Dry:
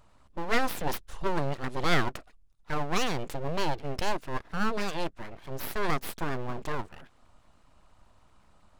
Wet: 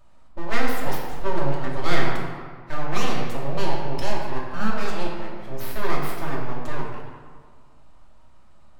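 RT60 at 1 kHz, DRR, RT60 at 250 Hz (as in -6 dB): 1.8 s, -3.0 dB, 2.0 s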